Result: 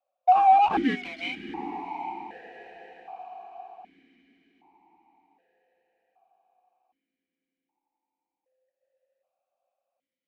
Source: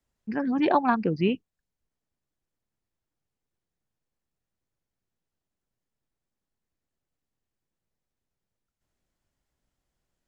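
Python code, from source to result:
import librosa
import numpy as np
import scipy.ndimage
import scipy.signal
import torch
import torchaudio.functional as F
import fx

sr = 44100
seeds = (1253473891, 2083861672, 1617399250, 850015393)

p1 = fx.band_swap(x, sr, width_hz=500)
p2 = fx.hum_notches(p1, sr, base_hz=50, count=8)
p3 = fx.fuzz(p2, sr, gain_db=34.0, gate_db=-43.0)
p4 = p2 + F.gain(torch.from_numpy(p3), -10.0).numpy()
p5 = fx.peak_eq(p4, sr, hz=1400.0, db=2.0, octaves=0.77)
p6 = p5 + fx.echo_diffused(p5, sr, ms=786, feedback_pct=41, wet_db=-11.0, dry=0)
p7 = fx.vowel_held(p6, sr, hz=1.3)
y = F.gain(torch.from_numpy(p7), 6.5).numpy()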